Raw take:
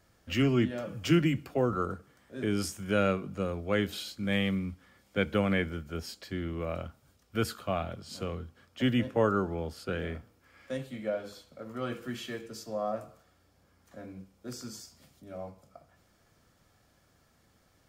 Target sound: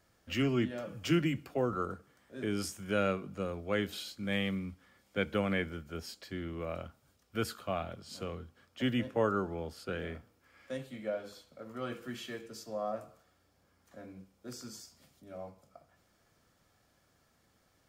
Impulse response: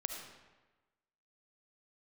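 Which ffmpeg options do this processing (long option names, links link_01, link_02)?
-af "lowshelf=frequency=180:gain=-4,volume=-3dB"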